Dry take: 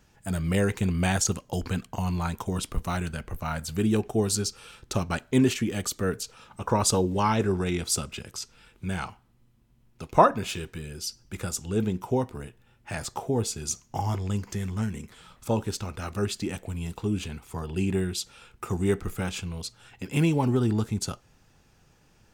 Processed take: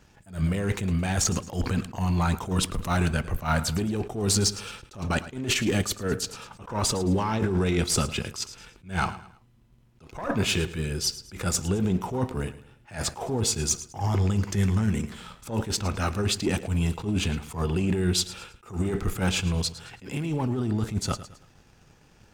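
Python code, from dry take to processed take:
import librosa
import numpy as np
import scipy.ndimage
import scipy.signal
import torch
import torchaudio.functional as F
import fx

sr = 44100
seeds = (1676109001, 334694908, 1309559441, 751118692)

p1 = fx.diode_clip(x, sr, knee_db=-16.0)
p2 = fx.high_shelf(p1, sr, hz=9400.0, db=-6.5)
p3 = fx.over_compress(p2, sr, threshold_db=-30.0, ratio=-1.0)
p4 = fx.leveller(p3, sr, passes=1)
p5 = p4 + fx.echo_feedback(p4, sr, ms=109, feedback_pct=36, wet_db=-15.5, dry=0)
p6 = fx.attack_slew(p5, sr, db_per_s=180.0)
y = p6 * 10.0 ** (2.5 / 20.0)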